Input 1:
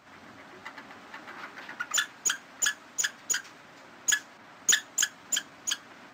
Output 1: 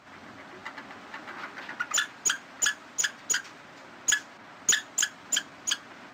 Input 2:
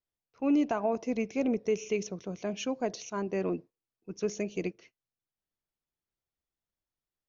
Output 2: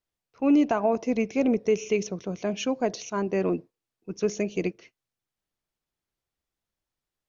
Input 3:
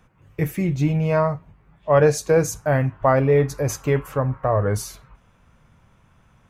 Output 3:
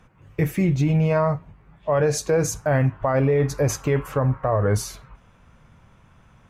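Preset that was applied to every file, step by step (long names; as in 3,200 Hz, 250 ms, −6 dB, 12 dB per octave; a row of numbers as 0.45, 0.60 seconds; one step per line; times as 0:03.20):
high-shelf EQ 11,000 Hz −8 dB
brickwall limiter −15 dBFS
floating-point word with a short mantissa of 8 bits
normalise the peak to −12 dBFS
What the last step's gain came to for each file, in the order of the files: +3.0, +5.5, +3.0 decibels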